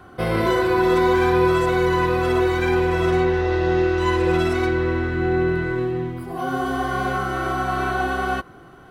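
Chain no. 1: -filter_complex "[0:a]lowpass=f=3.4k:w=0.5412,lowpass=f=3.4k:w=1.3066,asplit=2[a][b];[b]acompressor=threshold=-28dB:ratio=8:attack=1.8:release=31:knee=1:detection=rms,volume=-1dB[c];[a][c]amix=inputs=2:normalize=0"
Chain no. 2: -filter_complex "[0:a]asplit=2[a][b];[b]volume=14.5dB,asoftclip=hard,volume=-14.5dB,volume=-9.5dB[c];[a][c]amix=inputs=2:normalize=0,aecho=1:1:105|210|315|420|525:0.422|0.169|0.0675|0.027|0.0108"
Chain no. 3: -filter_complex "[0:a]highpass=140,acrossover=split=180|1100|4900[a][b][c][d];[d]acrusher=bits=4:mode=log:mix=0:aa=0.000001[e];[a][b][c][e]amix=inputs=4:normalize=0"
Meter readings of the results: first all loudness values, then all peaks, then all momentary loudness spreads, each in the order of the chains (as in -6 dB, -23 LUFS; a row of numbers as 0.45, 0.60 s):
-19.0, -16.0, -21.0 LUFS; -6.0, -4.0, -7.0 dBFS; 6, 9, 7 LU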